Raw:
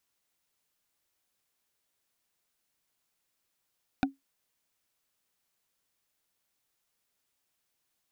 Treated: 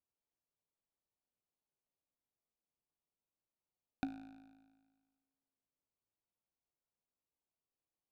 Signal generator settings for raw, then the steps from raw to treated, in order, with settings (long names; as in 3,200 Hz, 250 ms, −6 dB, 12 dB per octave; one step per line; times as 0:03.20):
struck wood, lowest mode 273 Hz, decay 0.16 s, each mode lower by 2 dB, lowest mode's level −19.5 dB
adaptive Wiener filter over 25 samples
tuned comb filter 54 Hz, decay 1.5 s, harmonics all, mix 70%